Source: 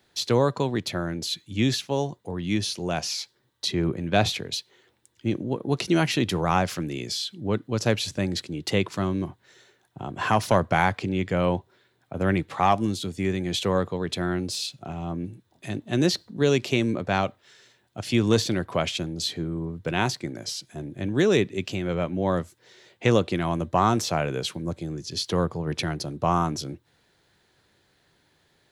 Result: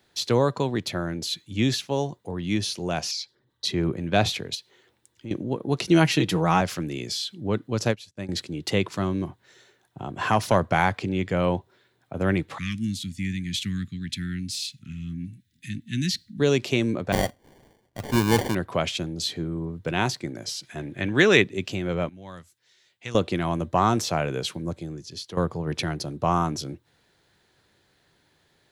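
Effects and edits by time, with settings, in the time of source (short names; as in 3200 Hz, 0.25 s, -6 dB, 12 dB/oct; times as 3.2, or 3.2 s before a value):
3.11–3.65 formant sharpening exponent 1.5
4.55–5.31 compressor 2.5:1, threshold -37 dBFS
5.9–6.61 comb 6.3 ms
7.88–8.29 upward expander 2.5:1, over -40 dBFS
12.58–16.4 elliptic band-stop 240–1900 Hz, stop band 60 dB
17.12–18.55 sample-rate reducer 1300 Hz
20.63–21.42 bell 2000 Hz +11.5 dB 2.1 oct
22.09–23.15 passive tone stack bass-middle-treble 5-5-5
24.64–25.37 fade out, to -12.5 dB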